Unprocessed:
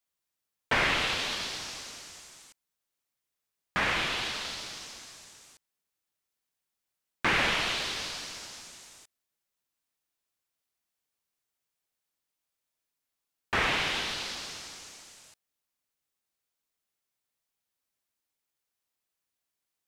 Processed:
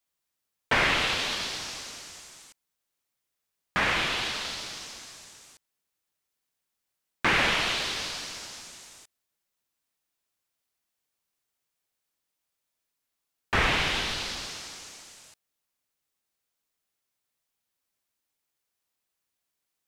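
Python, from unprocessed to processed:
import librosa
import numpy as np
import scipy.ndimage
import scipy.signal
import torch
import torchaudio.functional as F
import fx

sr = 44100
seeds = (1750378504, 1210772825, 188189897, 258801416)

y = fx.low_shelf(x, sr, hz=110.0, db=10.0, at=(13.54, 14.47))
y = y * 10.0 ** (2.5 / 20.0)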